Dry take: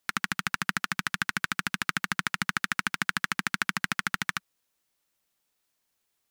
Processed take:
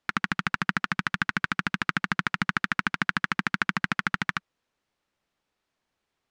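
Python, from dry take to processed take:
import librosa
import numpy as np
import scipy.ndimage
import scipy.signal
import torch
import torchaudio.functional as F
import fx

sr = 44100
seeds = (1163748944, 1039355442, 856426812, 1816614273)

y = fx.spacing_loss(x, sr, db_at_10k=21)
y = y * 10.0 ** (6.0 / 20.0)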